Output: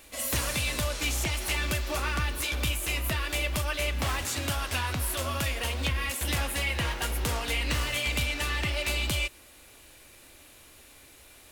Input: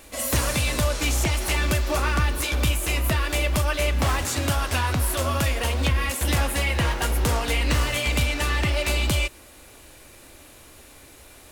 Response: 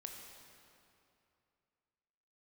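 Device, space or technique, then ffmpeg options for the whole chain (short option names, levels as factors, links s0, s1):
presence and air boost: -af "equalizer=f=2900:t=o:w=1.8:g=5,highshelf=f=9400:g=6,volume=0.398"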